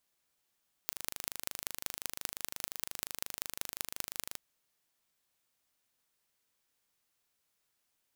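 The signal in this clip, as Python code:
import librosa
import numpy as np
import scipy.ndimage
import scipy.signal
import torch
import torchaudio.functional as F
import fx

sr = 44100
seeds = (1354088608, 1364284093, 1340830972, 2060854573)

y = fx.impulse_train(sr, length_s=3.47, per_s=25.7, accent_every=5, level_db=-6.0)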